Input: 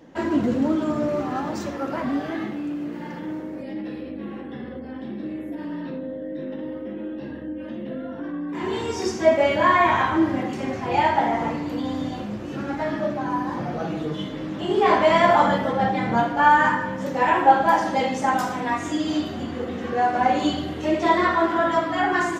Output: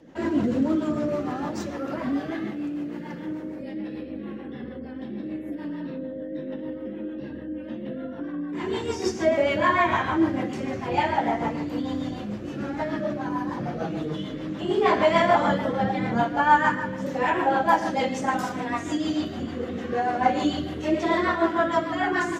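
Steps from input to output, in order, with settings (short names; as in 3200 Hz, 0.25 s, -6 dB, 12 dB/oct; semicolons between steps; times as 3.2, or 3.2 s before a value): rotary speaker horn 6.7 Hz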